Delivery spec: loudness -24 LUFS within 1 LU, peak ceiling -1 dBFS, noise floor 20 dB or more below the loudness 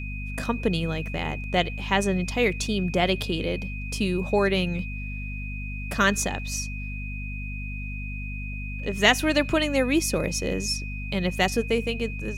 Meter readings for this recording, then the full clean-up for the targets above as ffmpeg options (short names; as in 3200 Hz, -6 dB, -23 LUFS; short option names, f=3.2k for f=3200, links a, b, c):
hum 50 Hz; harmonics up to 250 Hz; hum level -31 dBFS; steady tone 2500 Hz; tone level -37 dBFS; loudness -26.0 LUFS; peak -3.5 dBFS; loudness target -24.0 LUFS
-> -af "bandreject=f=50:t=h:w=4,bandreject=f=100:t=h:w=4,bandreject=f=150:t=h:w=4,bandreject=f=200:t=h:w=4,bandreject=f=250:t=h:w=4"
-af "bandreject=f=2.5k:w=30"
-af "volume=2dB"